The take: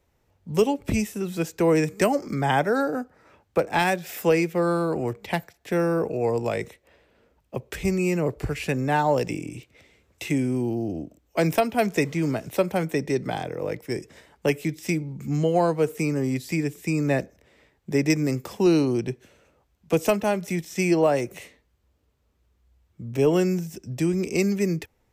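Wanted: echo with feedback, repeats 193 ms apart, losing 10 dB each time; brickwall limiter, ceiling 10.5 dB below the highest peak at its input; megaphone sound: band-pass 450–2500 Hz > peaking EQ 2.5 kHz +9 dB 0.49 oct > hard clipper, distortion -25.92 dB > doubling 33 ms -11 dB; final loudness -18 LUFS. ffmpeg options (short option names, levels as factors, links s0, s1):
-filter_complex "[0:a]alimiter=limit=0.1:level=0:latency=1,highpass=450,lowpass=2500,equalizer=f=2500:t=o:w=0.49:g=9,aecho=1:1:193|386|579|772:0.316|0.101|0.0324|0.0104,asoftclip=type=hard:threshold=0.0708,asplit=2[s0][s1];[s1]adelay=33,volume=0.282[s2];[s0][s2]amix=inputs=2:normalize=0,volume=5.62"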